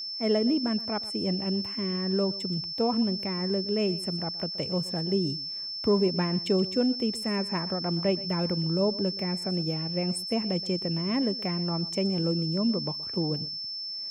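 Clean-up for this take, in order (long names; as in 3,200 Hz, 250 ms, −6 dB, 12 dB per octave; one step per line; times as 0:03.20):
notch filter 5,300 Hz, Q 30
echo removal 123 ms −18 dB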